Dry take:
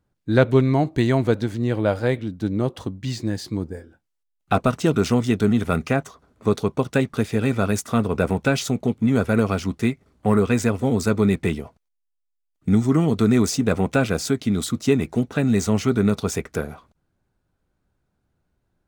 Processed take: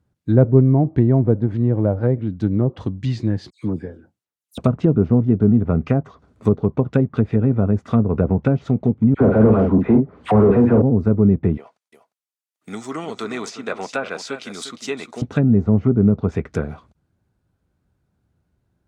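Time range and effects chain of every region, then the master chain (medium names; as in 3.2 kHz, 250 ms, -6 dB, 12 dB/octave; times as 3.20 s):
3.50–4.58 s: high-pass 120 Hz + phase dispersion lows, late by 125 ms, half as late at 2.7 kHz
9.14–10.82 s: doubling 46 ms -6.5 dB + phase dispersion lows, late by 69 ms, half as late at 1.2 kHz + overdrive pedal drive 25 dB, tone 2.1 kHz, clips at -7 dBFS
11.57–15.22 s: high-pass 660 Hz + treble shelf 6.2 kHz +3.5 dB + delay 353 ms -11 dB
whole clip: high-pass 67 Hz 12 dB/octave; low-pass that closes with the level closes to 670 Hz, closed at -16.5 dBFS; bass shelf 200 Hz +9.5 dB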